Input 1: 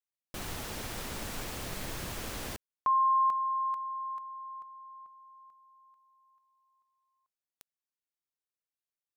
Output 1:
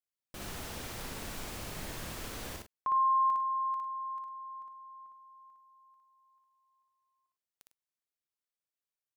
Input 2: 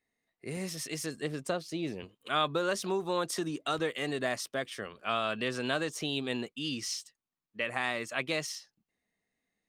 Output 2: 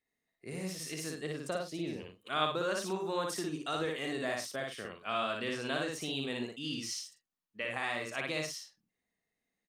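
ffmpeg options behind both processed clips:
-af "aecho=1:1:58.31|102:0.794|0.282,volume=0.562"

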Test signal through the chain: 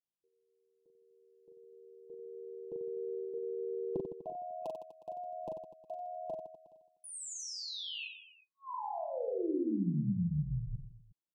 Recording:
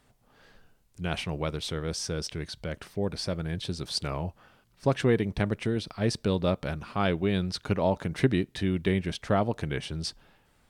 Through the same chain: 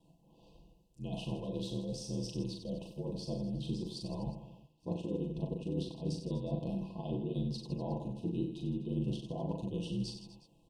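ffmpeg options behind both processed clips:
-filter_complex "[0:a]areverse,acompressor=threshold=0.0224:ratio=16,areverse,aeval=exprs='val(0)*sin(2*PI*40*n/s)':c=same,highshelf=f=7700:g=-4.5,aecho=1:1:6:0.61,afftfilt=real='re*(1-between(b*sr/4096,1100,2500))':imag='im*(1-between(b*sr/4096,1100,2500))':win_size=4096:overlap=0.75,equalizer=f=220:w=0.49:g=10,asplit=2[s0][s1];[s1]aecho=0:1:40|92|159.6|247.5|361.7:0.631|0.398|0.251|0.158|0.1[s2];[s0][s2]amix=inputs=2:normalize=0,volume=0.447"

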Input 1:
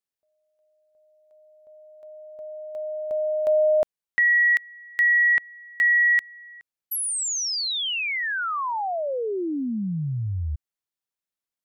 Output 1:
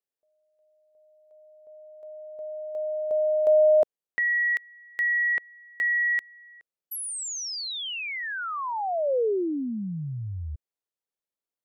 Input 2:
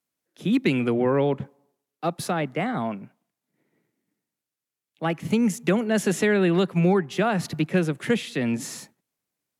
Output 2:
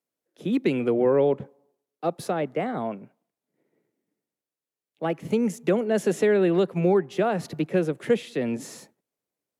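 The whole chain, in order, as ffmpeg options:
-af "equalizer=f=480:t=o:w=1.4:g=10,volume=0.473"

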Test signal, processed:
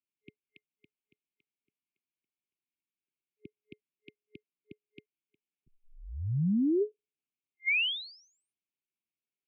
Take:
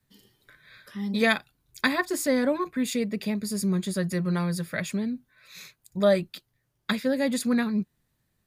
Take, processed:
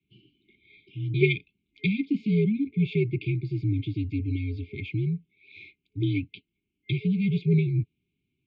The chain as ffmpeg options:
-af "highpass=f=210:t=q:w=0.5412,highpass=f=210:t=q:w=1.307,lowpass=f=3000:t=q:w=0.5176,lowpass=f=3000:t=q:w=0.7071,lowpass=f=3000:t=q:w=1.932,afreqshift=-80,afftfilt=real='re*(1-between(b*sr/4096,420,2100))':imag='im*(1-between(b*sr/4096,420,2100))':win_size=4096:overlap=0.75,volume=1.58"

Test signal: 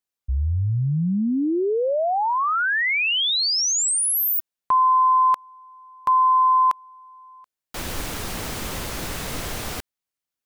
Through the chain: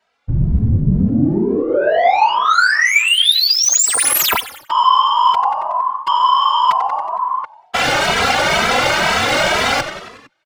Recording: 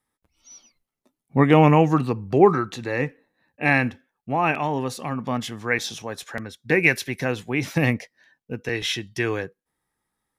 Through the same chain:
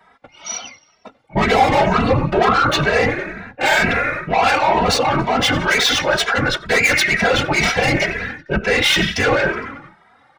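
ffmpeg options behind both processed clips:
-filter_complex "[0:a]highpass=f=77:w=0.5412,highpass=f=77:w=1.3066,aecho=1:1:1.4:0.5,adynamicsmooth=sensitivity=7:basefreq=3900,highshelf=f=4400:g=-10,asplit=2[s0][s1];[s1]asplit=5[s2][s3][s4][s5][s6];[s2]adelay=92,afreqshift=-64,volume=0.0708[s7];[s3]adelay=184,afreqshift=-128,volume=0.0452[s8];[s4]adelay=276,afreqshift=-192,volume=0.0288[s9];[s5]adelay=368,afreqshift=-256,volume=0.0186[s10];[s6]adelay=460,afreqshift=-320,volume=0.0119[s11];[s7][s8][s9][s10][s11]amix=inputs=5:normalize=0[s12];[s0][s12]amix=inputs=2:normalize=0,asplit=2[s13][s14];[s14]highpass=f=720:p=1,volume=12.6,asoftclip=type=tanh:threshold=0.75[s15];[s13][s15]amix=inputs=2:normalize=0,lowpass=f=5400:p=1,volume=0.501,areverse,acompressor=threshold=0.0562:ratio=8:attack=4.9:release=108:knee=6:detection=rms,areverse,apsyclip=25.1,afftfilt=real='hypot(re,im)*cos(2*PI*random(0))':imag='hypot(re,im)*sin(2*PI*random(1))':win_size=512:overlap=0.75,asplit=2[s16][s17];[s17]adelay=2.7,afreqshift=2.1[s18];[s16][s18]amix=inputs=2:normalize=1,volume=0.75"

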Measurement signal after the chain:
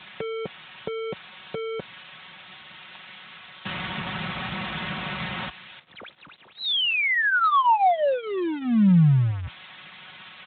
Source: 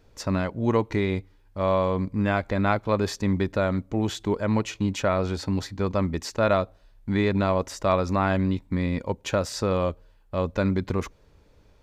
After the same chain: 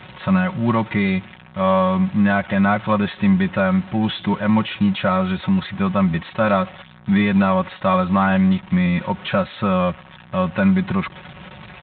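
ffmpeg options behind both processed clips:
-filter_complex "[0:a]aeval=exprs='val(0)+0.5*0.0158*sgn(val(0))':c=same,equalizer=f=400:t=o:w=1.1:g=-14.5,aecho=1:1:5.4:0.69,acrossover=split=980[s0][s1];[s1]asoftclip=type=hard:threshold=0.0299[s2];[s0][s2]amix=inputs=2:normalize=0,volume=2.66" -ar 8000 -c:a libspeex -b:a 24k

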